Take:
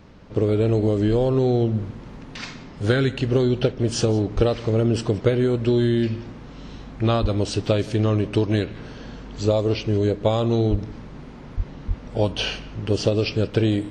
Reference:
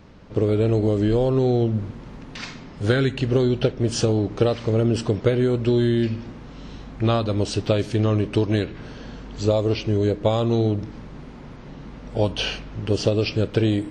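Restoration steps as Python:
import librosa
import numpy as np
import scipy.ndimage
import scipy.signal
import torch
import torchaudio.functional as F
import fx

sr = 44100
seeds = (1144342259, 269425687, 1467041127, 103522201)

y = fx.fix_deplosive(x, sr, at_s=(4.35, 7.21, 10.7, 11.56, 11.87))
y = fx.fix_echo_inverse(y, sr, delay_ms=174, level_db=-22.0)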